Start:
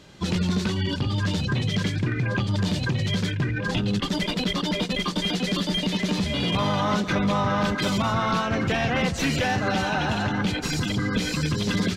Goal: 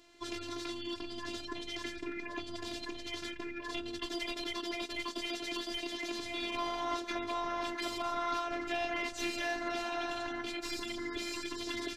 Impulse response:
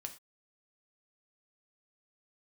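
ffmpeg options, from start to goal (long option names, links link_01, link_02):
-af "equalizer=frequency=83:width_type=o:width=1.7:gain=-10.5,afftfilt=real='hypot(re,im)*cos(PI*b)':imag='0':win_size=512:overlap=0.75,volume=-6.5dB"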